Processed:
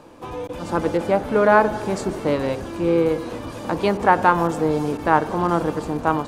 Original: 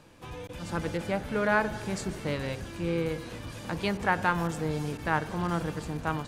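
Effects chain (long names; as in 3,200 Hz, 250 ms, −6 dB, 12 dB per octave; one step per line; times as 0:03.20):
flat-topped bell 540 Hz +9 dB 2.7 octaves
level +3.5 dB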